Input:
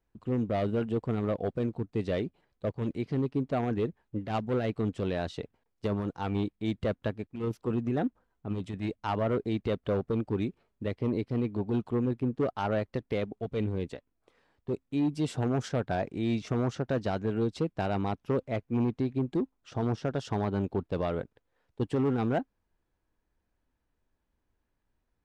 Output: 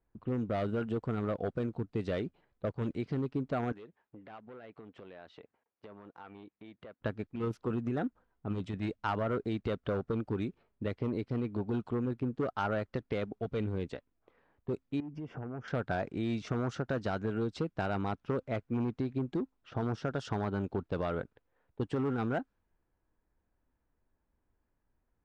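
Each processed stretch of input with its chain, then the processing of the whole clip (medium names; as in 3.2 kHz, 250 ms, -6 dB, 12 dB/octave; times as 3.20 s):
3.72–7.01 s: high-pass 590 Hz 6 dB/octave + compression 4:1, threshold -48 dBFS
15.00–15.68 s: boxcar filter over 11 samples + compression 12:1, threshold -37 dBFS
whole clip: compression 3:1, threshold -31 dBFS; dynamic bell 1.4 kHz, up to +7 dB, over -60 dBFS, Q 3.2; level-controlled noise filter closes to 1.9 kHz, open at -28.5 dBFS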